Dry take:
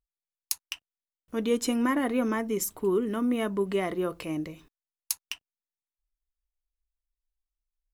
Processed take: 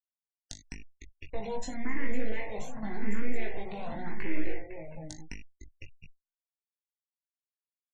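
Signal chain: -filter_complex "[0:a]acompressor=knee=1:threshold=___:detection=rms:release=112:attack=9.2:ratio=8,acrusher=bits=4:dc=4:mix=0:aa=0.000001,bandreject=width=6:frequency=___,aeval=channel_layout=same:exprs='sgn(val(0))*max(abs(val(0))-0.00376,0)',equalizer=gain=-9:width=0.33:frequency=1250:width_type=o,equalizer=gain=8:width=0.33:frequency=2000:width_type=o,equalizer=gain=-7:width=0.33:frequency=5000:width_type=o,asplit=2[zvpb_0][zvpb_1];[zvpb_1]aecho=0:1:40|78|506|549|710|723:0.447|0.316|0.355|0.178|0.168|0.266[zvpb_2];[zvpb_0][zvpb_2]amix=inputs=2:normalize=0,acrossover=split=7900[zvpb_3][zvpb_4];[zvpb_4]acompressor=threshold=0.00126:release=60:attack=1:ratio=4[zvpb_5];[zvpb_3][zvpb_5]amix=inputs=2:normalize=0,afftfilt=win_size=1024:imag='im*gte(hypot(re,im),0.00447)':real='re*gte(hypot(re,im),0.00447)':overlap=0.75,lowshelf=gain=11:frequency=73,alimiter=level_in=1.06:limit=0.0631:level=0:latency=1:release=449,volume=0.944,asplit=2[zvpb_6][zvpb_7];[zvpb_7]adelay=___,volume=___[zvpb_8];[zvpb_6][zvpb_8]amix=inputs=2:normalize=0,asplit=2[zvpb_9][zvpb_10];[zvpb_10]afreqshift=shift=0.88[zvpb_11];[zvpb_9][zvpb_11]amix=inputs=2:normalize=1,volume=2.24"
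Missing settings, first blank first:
0.0224, 3000, 19, 0.631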